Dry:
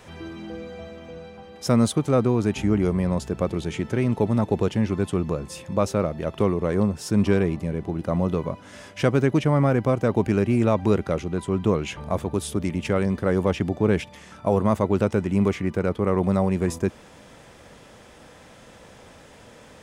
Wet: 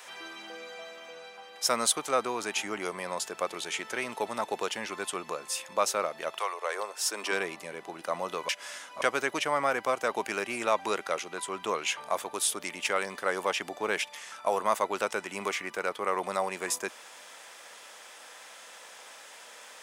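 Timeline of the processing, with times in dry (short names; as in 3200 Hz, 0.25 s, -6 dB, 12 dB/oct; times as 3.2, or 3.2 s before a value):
6.38–7.31 HPF 620 Hz -> 260 Hz 24 dB/oct
8.49–9.02 reverse
whole clip: HPF 890 Hz 12 dB/oct; high shelf 5400 Hz +6 dB; gain +2.5 dB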